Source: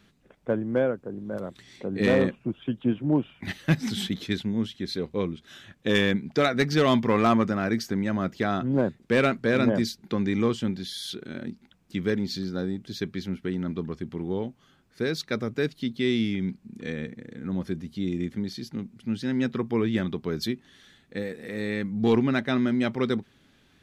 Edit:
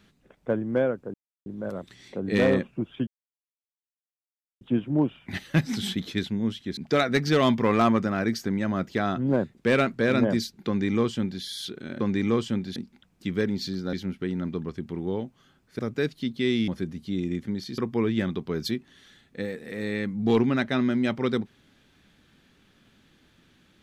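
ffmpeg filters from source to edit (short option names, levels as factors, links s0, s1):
-filter_complex "[0:a]asplit=10[s0][s1][s2][s3][s4][s5][s6][s7][s8][s9];[s0]atrim=end=1.14,asetpts=PTS-STARTPTS,afade=t=out:st=1.136:d=0.004:c=hsin,apad=pad_dur=0.32[s10];[s1]atrim=start=1.14:end=2.75,asetpts=PTS-STARTPTS,afade=t=in:d=0.004:c=hsin,afade=t=out:st=1.606:d=0.004:c=hsin,apad=pad_dur=1.54[s11];[s2]atrim=start=2.75:end=4.912,asetpts=PTS-STARTPTS,afade=t=in:d=0.004:c=hsin[s12];[s3]atrim=start=6.218:end=11.452[s13];[s4]atrim=start=10.118:end=10.882[s14];[s5]atrim=start=11.448:end=12.622[s15];[s6]atrim=start=13.158:end=15.022[s16];[s7]atrim=start=15.388:end=16.282[s17];[s8]atrim=start=17.568:end=18.672[s18];[s9]atrim=start=19.548[s19];[s10][s11][s12]concat=n=3:v=0:a=1[s20];[s20][s13]acrossfade=d=0.004:c1=hsin:c2=hsin[s21];[s21][s14]acrossfade=d=0.004:c1=hsin:c2=hsin[s22];[s22][s15]acrossfade=d=0.004:c1=hsin:c2=hsin[s23];[s23][s16]acrossfade=d=0.004:c1=hsin:c2=hsin[s24];[s24][s17]acrossfade=d=0.004:c1=hsin:c2=hsin[s25];[s25][s18]acrossfade=d=0.004:c1=hsin:c2=hsin[s26];[s26][s19]acrossfade=d=0.004:c1=hsin:c2=hsin"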